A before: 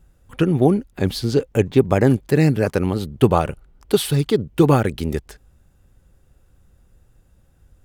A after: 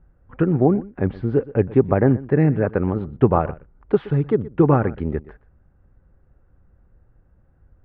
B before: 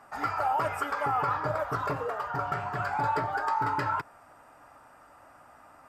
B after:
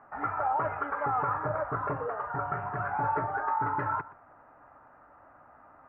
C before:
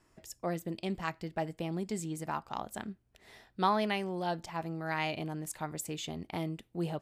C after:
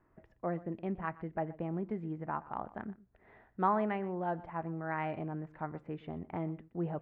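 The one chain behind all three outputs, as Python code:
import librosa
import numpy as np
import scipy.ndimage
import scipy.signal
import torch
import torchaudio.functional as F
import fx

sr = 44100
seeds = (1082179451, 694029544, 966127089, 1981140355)

p1 = scipy.signal.sosfilt(scipy.signal.butter(4, 1800.0, 'lowpass', fs=sr, output='sos'), x)
p2 = p1 + fx.echo_single(p1, sr, ms=122, db=-19.0, dry=0)
y = F.gain(torch.from_numpy(p2), -1.0).numpy()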